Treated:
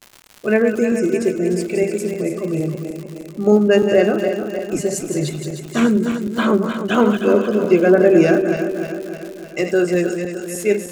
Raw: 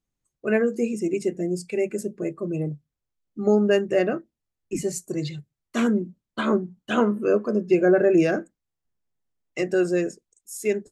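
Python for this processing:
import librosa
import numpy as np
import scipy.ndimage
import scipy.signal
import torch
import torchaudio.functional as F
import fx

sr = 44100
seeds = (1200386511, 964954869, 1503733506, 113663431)

y = fx.reverse_delay_fb(x, sr, ms=153, feedback_pct=74, wet_db=-7.0)
y = fx.dmg_crackle(y, sr, seeds[0], per_s=140.0, level_db=-33.0)
y = y + 10.0 ** (-20.5 / 20.0) * np.pad(y, (int(104 * sr / 1000.0), 0))[:len(y)]
y = F.gain(torch.from_numpy(y), 5.5).numpy()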